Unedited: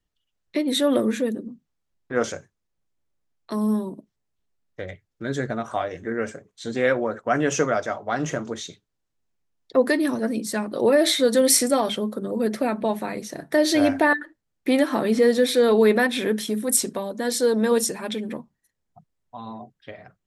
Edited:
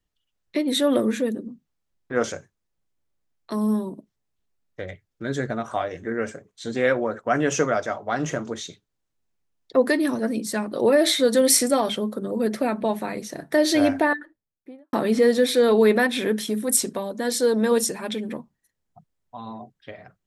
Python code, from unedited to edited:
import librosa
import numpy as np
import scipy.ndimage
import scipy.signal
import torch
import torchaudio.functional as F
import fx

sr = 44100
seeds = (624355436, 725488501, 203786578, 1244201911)

y = fx.studio_fade_out(x, sr, start_s=13.78, length_s=1.15)